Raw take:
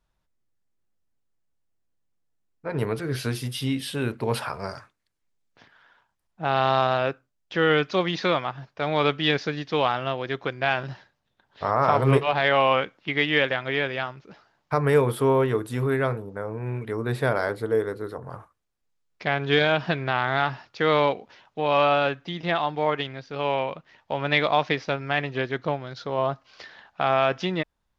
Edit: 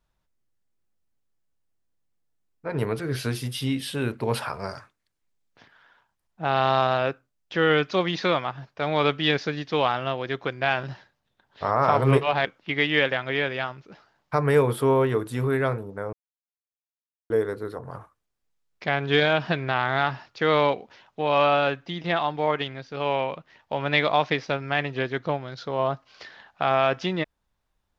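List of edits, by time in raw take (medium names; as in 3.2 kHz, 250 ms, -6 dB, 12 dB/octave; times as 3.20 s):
12.45–12.84 s: delete
16.52–17.69 s: mute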